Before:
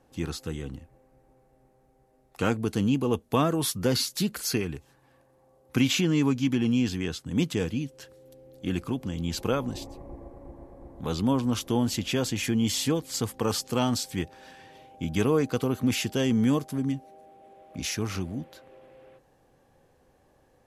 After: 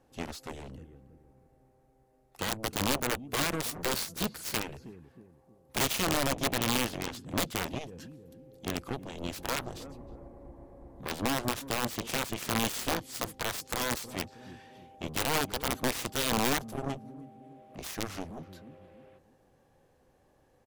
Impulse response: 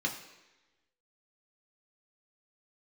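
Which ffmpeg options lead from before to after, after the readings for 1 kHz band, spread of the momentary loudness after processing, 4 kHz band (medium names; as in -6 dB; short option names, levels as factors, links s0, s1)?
+0.5 dB, 21 LU, -1.5 dB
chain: -filter_complex "[0:a]asplit=2[s0][s1];[s1]adelay=316,lowpass=f=810:p=1,volume=0.188,asplit=2[s2][s3];[s3]adelay=316,lowpass=f=810:p=1,volume=0.4,asplit=2[s4][s5];[s5]adelay=316,lowpass=f=810:p=1,volume=0.4,asplit=2[s6][s7];[s7]adelay=316,lowpass=f=810:p=1,volume=0.4[s8];[s0][s2][s4][s6][s8]amix=inputs=5:normalize=0,aeval=exprs='(mod(7.5*val(0)+1,2)-1)/7.5':c=same,aeval=exprs='0.133*(cos(1*acos(clip(val(0)/0.133,-1,1)))-cos(1*PI/2))+0.0335*(cos(3*acos(clip(val(0)/0.133,-1,1)))-cos(3*PI/2))+0.0237*(cos(7*acos(clip(val(0)/0.133,-1,1)))-cos(7*PI/2))':c=same,volume=0.668"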